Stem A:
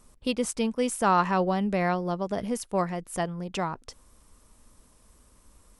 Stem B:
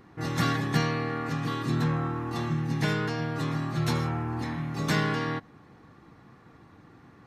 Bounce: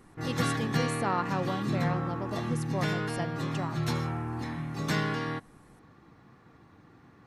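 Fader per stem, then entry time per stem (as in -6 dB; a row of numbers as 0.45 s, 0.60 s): -8.0 dB, -3.0 dB; 0.00 s, 0.00 s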